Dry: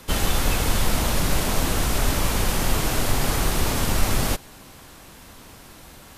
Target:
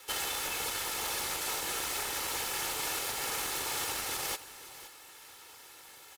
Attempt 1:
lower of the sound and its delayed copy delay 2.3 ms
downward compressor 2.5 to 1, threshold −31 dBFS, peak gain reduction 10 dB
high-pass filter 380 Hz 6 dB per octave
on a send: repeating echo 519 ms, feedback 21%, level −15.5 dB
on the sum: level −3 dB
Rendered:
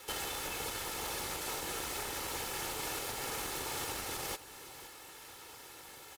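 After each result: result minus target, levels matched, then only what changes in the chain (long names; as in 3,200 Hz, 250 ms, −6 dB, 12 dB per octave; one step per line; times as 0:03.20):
downward compressor: peak gain reduction +5.5 dB; 500 Hz band +4.5 dB
change: downward compressor 2.5 to 1, threshold −22 dBFS, peak gain reduction 4.5 dB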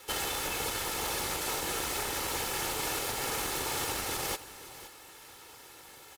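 500 Hz band +4.5 dB
change: high-pass filter 980 Hz 6 dB per octave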